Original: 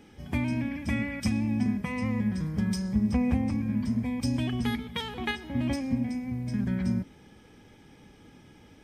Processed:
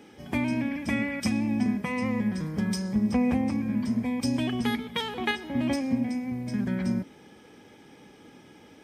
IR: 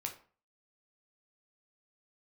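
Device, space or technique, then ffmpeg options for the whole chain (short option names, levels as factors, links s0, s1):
filter by subtraction: -filter_complex "[0:a]asplit=2[s0][s1];[s1]lowpass=390,volume=-1[s2];[s0][s2]amix=inputs=2:normalize=0,volume=1.41"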